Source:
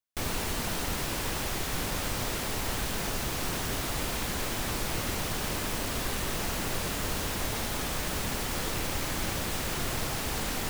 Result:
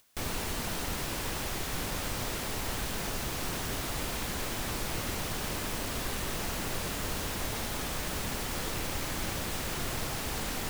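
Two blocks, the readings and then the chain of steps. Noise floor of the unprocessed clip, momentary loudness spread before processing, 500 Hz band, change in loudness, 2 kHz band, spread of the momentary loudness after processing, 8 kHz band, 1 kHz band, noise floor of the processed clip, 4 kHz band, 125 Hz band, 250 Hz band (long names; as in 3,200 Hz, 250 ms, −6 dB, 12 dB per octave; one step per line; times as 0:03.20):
−33 dBFS, 0 LU, −2.5 dB, −2.5 dB, −2.5 dB, 0 LU, −2.5 dB, −2.5 dB, −36 dBFS, −2.5 dB, −2.5 dB, −2.5 dB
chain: upward compression, threshold −42 dBFS
level −2.5 dB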